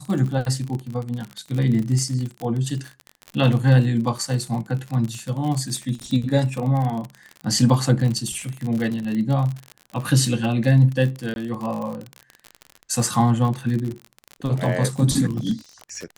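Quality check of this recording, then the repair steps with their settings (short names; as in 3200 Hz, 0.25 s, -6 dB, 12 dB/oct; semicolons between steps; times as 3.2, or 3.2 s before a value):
crackle 47/s -26 dBFS
11.34–11.36 gap 21 ms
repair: de-click; interpolate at 11.34, 21 ms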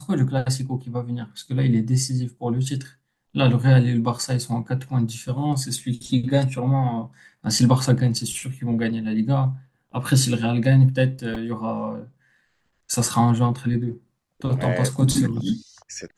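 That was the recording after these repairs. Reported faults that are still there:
none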